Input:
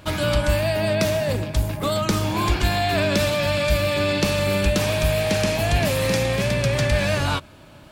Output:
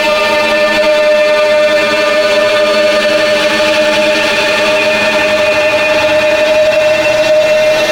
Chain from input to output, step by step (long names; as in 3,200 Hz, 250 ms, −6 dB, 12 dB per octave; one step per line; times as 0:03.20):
high-pass filter 530 Hz 12 dB per octave
downward compressor 12 to 1, threshold −30 dBFS, peak gain reduction 11 dB
Savitzky-Golay smoothing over 15 samples
hard clipping −30.5 dBFS, distortion −15 dB
frequency shifter +19 Hz
extreme stretch with random phases 45×, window 0.10 s, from 0:04.56
on a send: delay with a low-pass on its return 86 ms, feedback 76%, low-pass 1,800 Hz, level −5.5 dB
on the sum: boost into a limiter +29.5 dB
level −1 dB